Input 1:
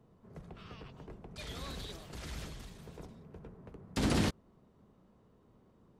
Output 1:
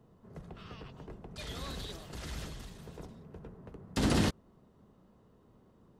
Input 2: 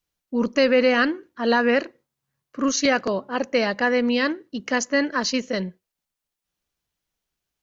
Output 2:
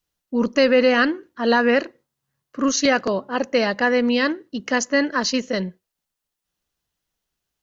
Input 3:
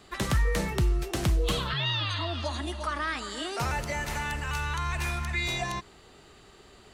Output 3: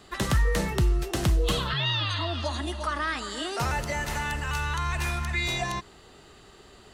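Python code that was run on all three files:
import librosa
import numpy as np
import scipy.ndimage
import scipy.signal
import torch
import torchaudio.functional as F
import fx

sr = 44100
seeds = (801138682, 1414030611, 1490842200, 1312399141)

y = fx.notch(x, sr, hz=2300.0, q=16.0)
y = y * 10.0 ** (2.0 / 20.0)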